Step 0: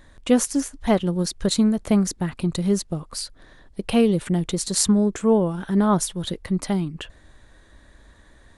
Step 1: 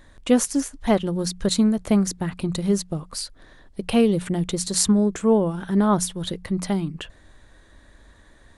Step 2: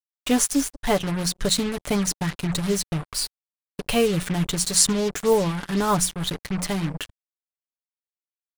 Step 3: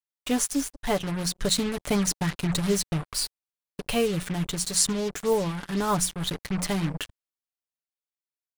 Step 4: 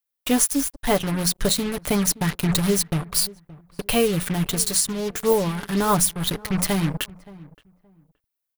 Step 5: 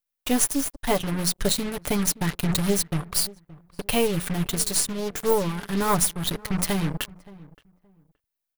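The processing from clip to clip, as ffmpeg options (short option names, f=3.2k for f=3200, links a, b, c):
-af "bandreject=f=60:t=h:w=6,bandreject=f=120:t=h:w=6,bandreject=f=180:t=h:w=6"
-af "aecho=1:1:6.9:0.58,acrusher=bits=4:mix=0:aa=0.5,equalizer=f=340:w=0.4:g=-5.5,volume=2.5dB"
-af "dynaudnorm=f=270:g=11:m=6dB,volume=-5dB"
-filter_complex "[0:a]asplit=2[a][b];[b]adelay=572,lowpass=f=1.1k:p=1,volume=-20dB,asplit=2[c][d];[d]adelay=572,lowpass=f=1.1k:p=1,volume=0.22[e];[a][c][e]amix=inputs=3:normalize=0,alimiter=limit=-14.5dB:level=0:latency=1:release=447,aexciter=amount=2.6:drive=4.4:freq=10k,volume=5dB"
-af "aeval=exprs='if(lt(val(0),0),0.447*val(0),val(0))':c=same"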